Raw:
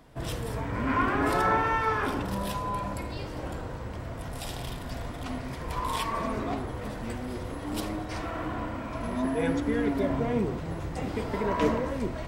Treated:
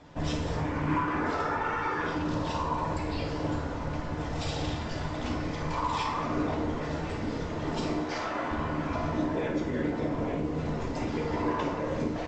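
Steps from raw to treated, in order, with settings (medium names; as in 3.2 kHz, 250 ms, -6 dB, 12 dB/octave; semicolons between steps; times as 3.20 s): 8.01–8.51 s: tone controls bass -13 dB, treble -1 dB; compression 10:1, threshold -31 dBFS, peak gain reduction 12 dB; whisper effect; early reflections 13 ms -9 dB, 53 ms -9 dB; FDN reverb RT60 0.78 s, low-frequency decay 0.75×, high-frequency decay 0.9×, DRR 2 dB; trim +1.5 dB; µ-law 128 kbps 16 kHz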